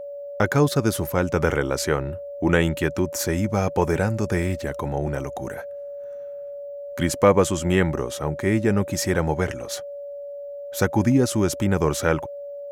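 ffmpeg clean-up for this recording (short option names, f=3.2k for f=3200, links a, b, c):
-af "bandreject=f=570:w=30"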